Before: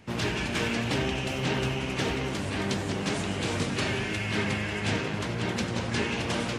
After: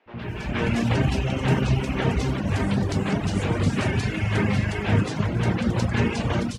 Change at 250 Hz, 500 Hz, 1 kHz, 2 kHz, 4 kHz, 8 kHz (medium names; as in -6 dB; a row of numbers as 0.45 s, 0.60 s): +6.0 dB, +3.0 dB, +3.5 dB, +0.5 dB, -2.5 dB, -2.5 dB